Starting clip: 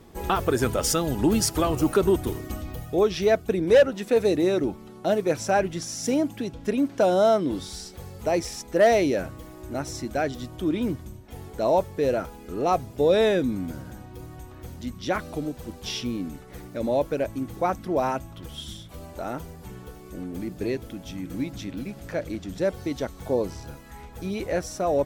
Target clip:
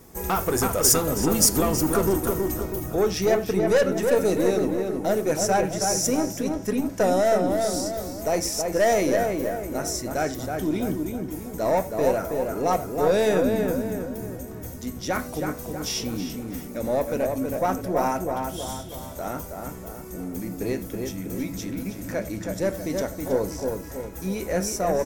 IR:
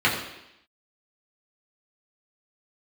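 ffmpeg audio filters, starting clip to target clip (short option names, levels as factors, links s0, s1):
-filter_complex "[0:a]aeval=exprs='(tanh(6.31*val(0)+0.25)-tanh(0.25))/6.31':c=same,asplit=2[s0][s1];[s1]adelay=322,lowpass=f=2200:p=1,volume=0.631,asplit=2[s2][s3];[s3]adelay=322,lowpass=f=2200:p=1,volume=0.49,asplit=2[s4][s5];[s5]adelay=322,lowpass=f=2200:p=1,volume=0.49,asplit=2[s6][s7];[s7]adelay=322,lowpass=f=2200:p=1,volume=0.49,asplit=2[s8][s9];[s9]adelay=322,lowpass=f=2200:p=1,volume=0.49,asplit=2[s10][s11];[s11]adelay=322,lowpass=f=2200:p=1,volume=0.49[s12];[s0][s2][s4][s6][s8][s10][s12]amix=inputs=7:normalize=0,aexciter=amount=3.7:drive=4.4:freq=5500,asplit=2[s13][s14];[1:a]atrim=start_sample=2205,atrim=end_sample=4410[s15];[s14][s15]afir=irnorm=-1:irlink=0,volume=0.0668[s16];[s13][s16]amix=inputs=2:normalize=0"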